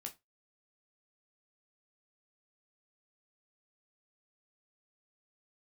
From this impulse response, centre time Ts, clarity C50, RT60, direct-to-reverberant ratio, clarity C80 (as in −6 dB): 10 ms, 17.0 dB, 0.20 s, 2.5 dB, 26.0 dB